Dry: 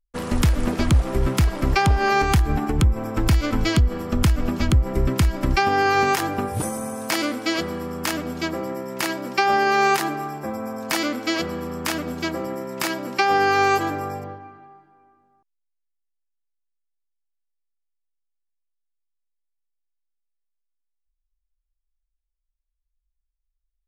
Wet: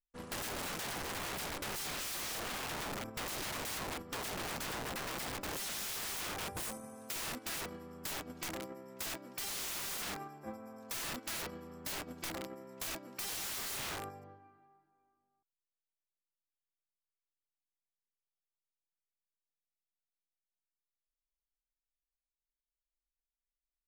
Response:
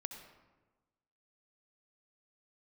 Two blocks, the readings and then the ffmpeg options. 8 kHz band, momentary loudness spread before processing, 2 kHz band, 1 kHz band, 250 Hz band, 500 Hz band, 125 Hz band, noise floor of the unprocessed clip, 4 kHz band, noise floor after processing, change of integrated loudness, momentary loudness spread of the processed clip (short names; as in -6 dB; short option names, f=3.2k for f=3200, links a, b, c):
-7.0 dB, 11 LU, -17.5 dB, -22.0 dB, -22.5 dB, -20.5 dB, -28.5 dB, -79 dBFS, -11.5 dB, under -85 dBFS, -17.5 dB, 7 LU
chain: -af "agate=range=-14dB:threshold=-26dB:ratio=16:detection=peak,aeval=exprs='(mod(17.8*val(0)+1,2)-1)/17.8':c=same,acompressor=threshold=-32dB:ratio=6,volume=-6dB"